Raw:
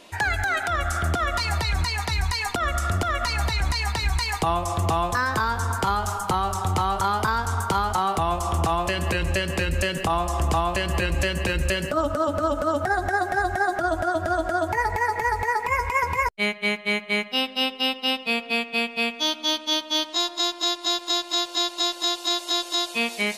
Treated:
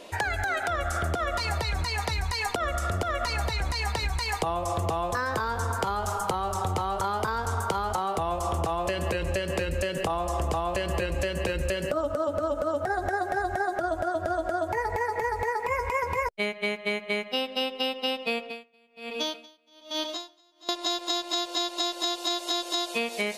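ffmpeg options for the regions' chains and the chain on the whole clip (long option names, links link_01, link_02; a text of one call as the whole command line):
ffmpeg -i in.wav -filter_complex "[0:a]asettb=1/sr,asplit=3[link_01][link_02][link_03];[link_01]atrim=end=18.384[link_04];[link_02]atrim=start=18.38:end=20.69,asetpts=PTS-STARTPTS,afade=type=in:duration=0.004:curve=qsin,afade=type=out:start_time=2.306:duration=0.004:curve=qsin,acompressor=threshold=-25dB:ratio=2.5:attack=3.2:release=140:knee=1:detection=peak,aecho=1:1:608:0.282,atrim=end_sample=101871,aeval=exprs='val(0)*pow(10,-36*(0.5-0.5*cos(2*PI*1.2*n/s))/20)':channel_layout=same[link_05];[link_03]atrim=start=20.686[link_06];[link_04][link_05]acrossfade=duration=0.004:curve1=hsin:curve2=qsin[link_07];[link_07][link_06]acrossfade=duration=0.004:curve1=qsin:curve2=hsin,equalizer=frequency=510:width_type=o:width=0.9:gain=8.5,acompressor=threshold=-25dB:ratio=6" out.wav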